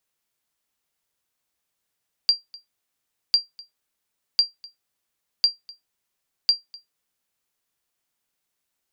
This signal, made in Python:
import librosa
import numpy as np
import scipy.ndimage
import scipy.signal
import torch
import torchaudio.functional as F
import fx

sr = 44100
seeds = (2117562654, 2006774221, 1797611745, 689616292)

y = fx.sonar_ping(sr, hz=4740.0, decay_s=0.16, every_s=1.05, pings=5, echo_s=0.25, echo_db=-23.5, level_db=-8.5)